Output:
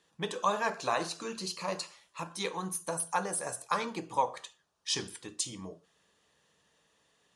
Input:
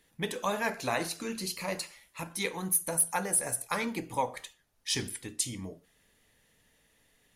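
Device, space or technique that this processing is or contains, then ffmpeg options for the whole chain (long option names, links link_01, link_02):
car door speaker: -af "highpass=110,equalizer=frequency=110:width_type=q:width=4:gain=-10,equalizer=frequency=250:width_type=q:width=4:gain=-9,equalizer=frequency=1100:width_type=q:width=4:gain=7,equalizer=frequency=2100:width_type=q:width=4:gain=-9,lowpass=frequency=8300:width=0.5412,lowpass=frequency=8300:width=1.3066"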